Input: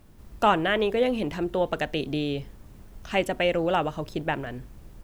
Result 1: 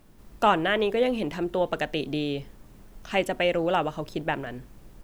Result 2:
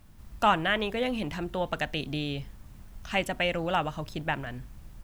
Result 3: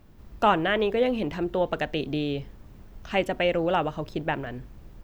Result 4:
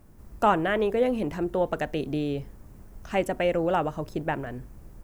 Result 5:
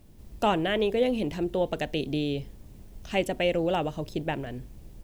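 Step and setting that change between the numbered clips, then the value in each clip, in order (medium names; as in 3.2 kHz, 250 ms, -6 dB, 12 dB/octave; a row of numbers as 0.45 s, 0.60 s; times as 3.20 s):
peaking EQ, frequency: 70 Hz, 410 Hz, 10 kHz, 3.4 kHz, 1.3 kHz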